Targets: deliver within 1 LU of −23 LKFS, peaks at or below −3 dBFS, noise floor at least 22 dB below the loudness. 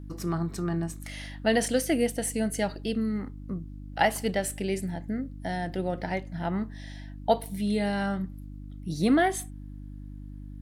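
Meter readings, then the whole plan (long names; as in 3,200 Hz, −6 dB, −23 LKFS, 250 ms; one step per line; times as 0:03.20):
mains hum 50 Hz; hum harmonics up to 300 Hz; level of the hum −39 dBFS; integrated loudness −29.0 LKFS; sample peak −8.0 dBFS; target loudness −23.0 LKFS
→ hum removal 50 Hz, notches 6
level +6 dB
brickwall limiter −3 dBFS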